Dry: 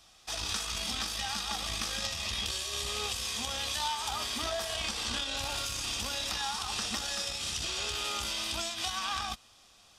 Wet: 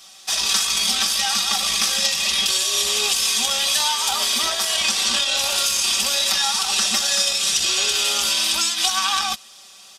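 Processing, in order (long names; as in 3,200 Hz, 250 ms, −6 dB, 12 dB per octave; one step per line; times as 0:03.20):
high-pass filter 280 Hz 6 dB per octave
high-shelf EQ 3,300 Hz +8 dB
comb filter 5.2 ms, depth 88%
level +7.5 dB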